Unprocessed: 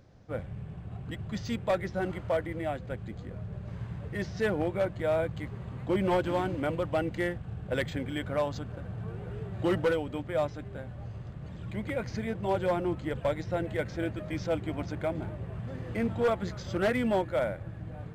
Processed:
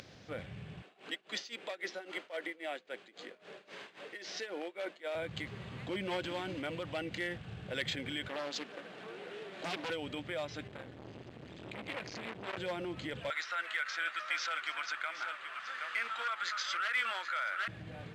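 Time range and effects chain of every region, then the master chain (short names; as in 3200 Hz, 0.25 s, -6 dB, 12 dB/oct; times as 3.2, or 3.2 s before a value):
0.82–5.15 HPF 310 Hz 24 dB/oct + tremolo 3.7 Hz, depth 91%
8.28–9.9 HPF 250 Hz 24 dB/oct + Doppler distortion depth 0.99 ms
10.67–12.58 overloaded stage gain 25.5 dB + core saturation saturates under 840 Hz
13.3–17.68 resonant high-pass 1300 Hz, resonance Q 5.5 + echo 0.773 s -13 dB
whole clip: limiter -30 dBFS; upward compressor, threshold -43 dBFS; weighting filter D; gain -1.5 dB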